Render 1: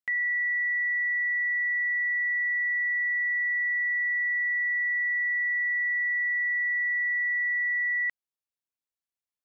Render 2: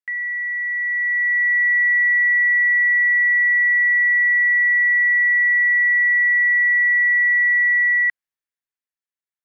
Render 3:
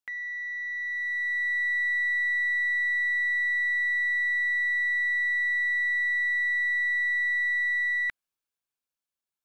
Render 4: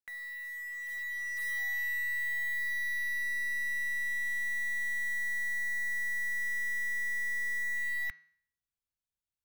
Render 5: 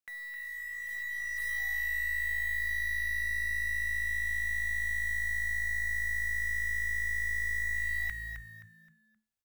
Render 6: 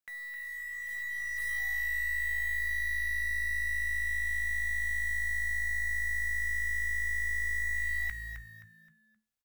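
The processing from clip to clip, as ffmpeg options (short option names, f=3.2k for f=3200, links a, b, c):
-af "equalizer=f=1.8k:t=o:w=0.84:g=10.5,dynaudnorm=f=110:g=21:m=9dB,volume=-7.5dB"
-filter_complex "[0:a]equalizer=f=1.9k:t=o:w=0.2:g=-13.5,asplit=2[a][b];[b]aeval=exprs='clip(val(0),-1,0.0106)':c=same,volume=-11.5dB[c];[a][c]amix=inputs=2:normalize=0"
-af "asubboost=boost=8.5:cutoff=130,acrusher=bits=3:mode=log:mix=0:aa=0.000001,bandreject=f=161.6:t=h:w=4,bandreject=f=323.2:t=h:w=4,bandreject=f=484.8:t=h:w=4,bandreject=f=646.4:t=h:w=4,bandreject=f=808:t=h:w=4,bandreject=f=969.6:t=h:w=4,bandreject=f=1.1312k:t=h:w=4,bandreject=f=1.2928k:t=h:w=4,bandreject=f=1.4544k:t=h:w=4,bandreject=f=1.616k:t=h:w=4,bandreject=f=1.7776k:t=h:w=4,bandreject=f=1.9392k:t=h:w=4,bandreject=f=2.1008k:t=h:w=4,bandreject=f=2.2624k:t=h:w=4,bandreject=f=2.424k:t=h:w=4,bandreject=f=2.5856k:t=h:w=4,bandreject=f=2.7472k:t=h:w=4,bandreject=f=2.9088k:t=h:w=4,bandreject=f=3.0704k:t=h:w=4,bandreject=f=3.232k:t=h:w=4,bandreject=f=3.3936k:t=h:w=4,bandreject=f=3.5552k:t=h:w=4,bandreject=f=3.7168k:t=h:w=4,bandreject=f=3.8784k:t=h:w=4,bandreject=f=4.04k:t=h:w=4,bandreject=f=4.2016k:t=h:w=4,bandreject=f=4.3632k:t=h:w=4,bandreject=f=4.5248k:t=h:w=4,bandreject=f=4.6864k:t=h:w=4,bandreject=f=4.848k:t=h:w=4,bandreject=f=5.0096k:t=h:w=4,bandreject=f=5.1712k:t=h:w=4,bandreject=f=5.3328k:t=h:w=4,bandreject=f=5.4944k:t=h:w=4,bandreject=f=5.656k:t=h:w=4,bandreject=f=5.8176k:t=h:w=4,bandreject=f=5.9792k:t=h:w=4,bandreject=f=6.1408k:t=h:w=4,bandreject=f=6.3024k:t=h:w=4,volume=-7.5dB"
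-filter_complex "[0:a]asplit=5[a][b][c][d][e];[b]adelay=262,afreqshift=-55,volume=-7dB[f];[c]adelay=524,afreqshift=-110,volume=-16.9dB[g];[d]adelay=786,afreqshift=-165,volume=-26.8dB[h];[e]adelay=1048,afreqshift=-220,volume=-36.7dB[i];[a][f][g][h][i]amix=inputs=5:normalize=0"
-filter_complex "[0:a]asplit=2[a][b];[b]adelay=15,volume=-13.5dB[c];[a][c]amix=inputs=2:normalize=0"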